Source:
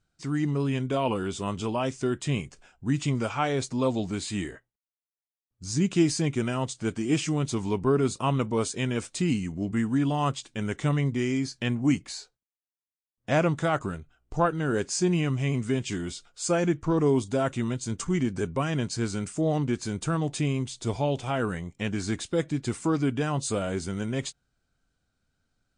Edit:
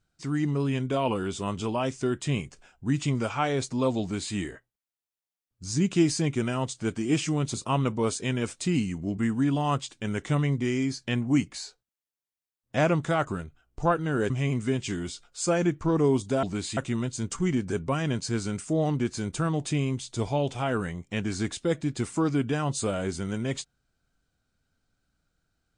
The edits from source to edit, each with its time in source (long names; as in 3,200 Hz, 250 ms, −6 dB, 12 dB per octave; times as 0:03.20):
0:04.01–0:04.35: duplicate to 0:17.45
0:07.54–0:08.08: remove
0:14.84–0:15.32: remove